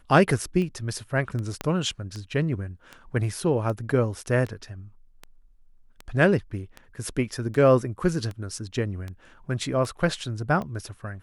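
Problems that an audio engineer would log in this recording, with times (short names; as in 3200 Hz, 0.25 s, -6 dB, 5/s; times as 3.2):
tick 78 rpm -22 dBFS
1.61 pop -14 dBFS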